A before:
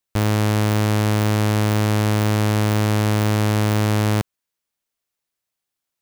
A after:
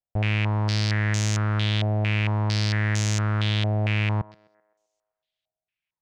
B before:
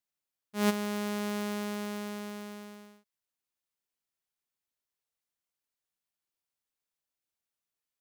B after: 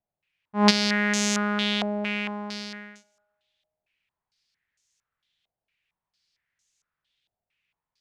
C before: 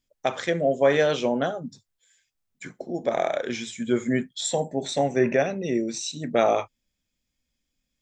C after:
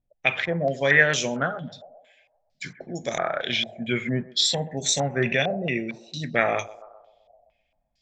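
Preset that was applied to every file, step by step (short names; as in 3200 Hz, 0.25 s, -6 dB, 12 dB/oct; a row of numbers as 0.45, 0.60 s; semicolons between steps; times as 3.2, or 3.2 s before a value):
band shelf 560 Hz -9.5 dB 2.9 oct; narrowing echo 0.129 s, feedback 57%, band-pass 670 Hz, level -16 dB; stepped low-pass 4.4 Hz 700–6600 Hz; match loudness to -24 LUFS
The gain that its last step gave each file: -3.5, +13.0, +4.5 dB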